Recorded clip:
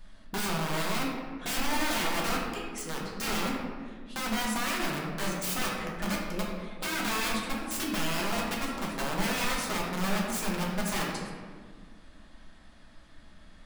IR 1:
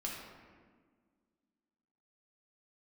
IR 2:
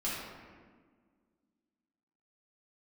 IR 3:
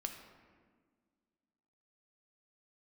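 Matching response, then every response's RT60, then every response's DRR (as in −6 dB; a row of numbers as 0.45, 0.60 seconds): 1; 1.7, 1.6, 1.7 seconds; −3.5, −9.0, 4.0 decibels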